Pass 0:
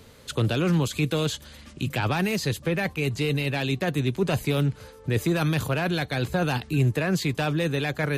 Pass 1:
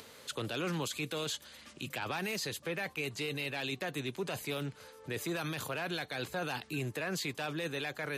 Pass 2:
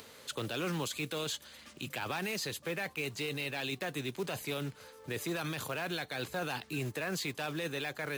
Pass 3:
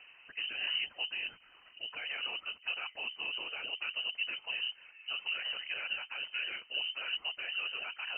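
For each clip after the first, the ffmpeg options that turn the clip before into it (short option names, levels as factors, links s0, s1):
-af "highpass=f=560:p=1,acompressor=mode=upward:threshold=0.00794:ratio=2.5,alimiter=limit=0.075:level=0:latency=1:release=21,volume=0.596"
-af "acrusher=bits=4:mode=log:mix=0:aa=0.000001"
-af "afftfilt=real='hypot(re,im)*cos(2*PI*random(0))':imag='hypot(re,im)*sin(2*PI*random(1))':win_size=512:overlap=0.75,tiltshelf=f=1200:g=6,lowpass=f=2600:t=q:w=0.5098,lowpass=f=2600:t=q:w=0.6013,lowpass=f=2600:t=q:w=0.9,lowpass=f=2600:t=q:w=2.563,afreqshift=-3100,volume=1.19"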